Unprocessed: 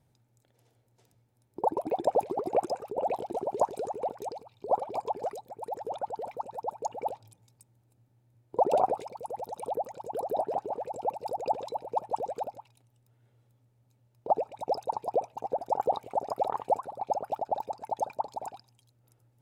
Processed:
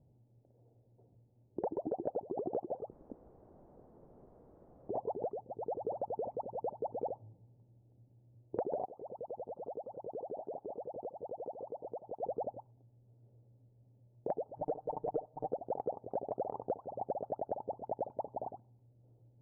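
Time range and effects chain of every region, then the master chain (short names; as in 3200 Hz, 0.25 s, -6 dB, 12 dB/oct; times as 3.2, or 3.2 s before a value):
2.91–4.89 Chebyshev high-pass 1900 Hz, order 6 + inverted band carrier 2800 Hz + requantised 8-bit, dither triangular
8.85–12.23 compressor 8:1, threshold -39 dBFS + low shelf 300 Hz -6.5 dB
14.56–15.49 block floating point 3-bit + comb 6.6 ms, depth 98%
whole clip: inverse Chebyshev low-pass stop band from 3900 Hz, stop band 80 dB; compressor 12:1, threshold -36 dBFS; gain +3 dB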